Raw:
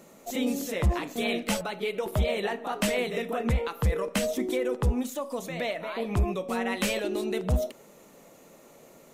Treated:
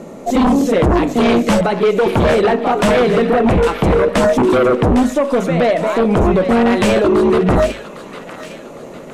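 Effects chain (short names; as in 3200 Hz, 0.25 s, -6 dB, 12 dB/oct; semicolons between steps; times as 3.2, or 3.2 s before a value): Bessel low-pass 9100 Hz, order 8; tilt shelf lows +7 dB, about 1200 Hz; notches 50/100/150/200 Hz; sine folder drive 12 dB, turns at -8.5 dBFS; thin delay 0.806 s, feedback 42%, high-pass 1500 Hz, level -8 dB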